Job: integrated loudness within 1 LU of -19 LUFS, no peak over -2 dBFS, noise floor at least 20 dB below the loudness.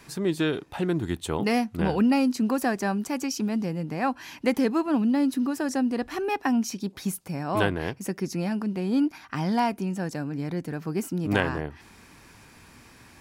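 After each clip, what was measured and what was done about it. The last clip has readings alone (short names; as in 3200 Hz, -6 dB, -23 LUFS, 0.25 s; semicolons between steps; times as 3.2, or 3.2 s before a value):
loudness -27.0 LUFS; peak -7.5 dBFS; loudness target -19.0 LUFS
-> gain +8 dB; limiter -2 dBFS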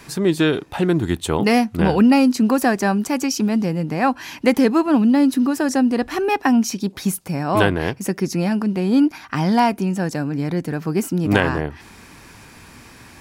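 loudness -19.0 LUFS; peak -2.0 dBFS; noise floor -44 dBFS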